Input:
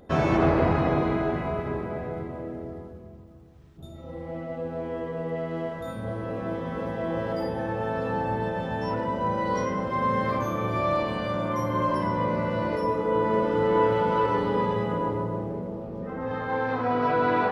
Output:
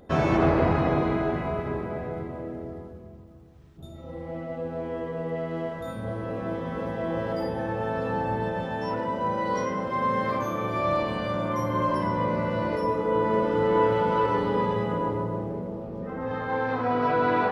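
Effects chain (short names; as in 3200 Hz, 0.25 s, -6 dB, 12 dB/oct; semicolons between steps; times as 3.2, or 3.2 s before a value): 8.65–10.85 low shelf 97 Hz -10 dB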